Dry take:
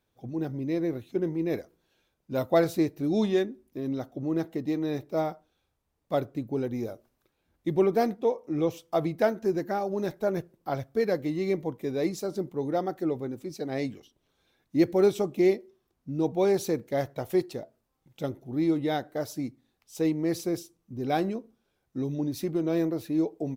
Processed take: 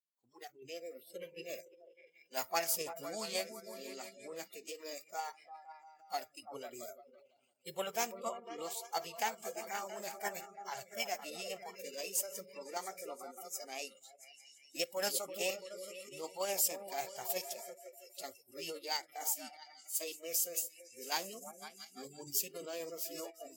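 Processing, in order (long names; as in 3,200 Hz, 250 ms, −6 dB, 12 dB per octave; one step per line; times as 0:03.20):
first difference
echo whose low-pass opens from repeat to repeat 169 ms, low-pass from 200 Hz, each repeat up 2 octaves, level −6 dB
noise reduction from a noise print of the clip's start 26 dB
formants moved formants +4 semitones
in parallel at −3 dB: output level in coarse steps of 15 dB
on the sum: level +5.5 dB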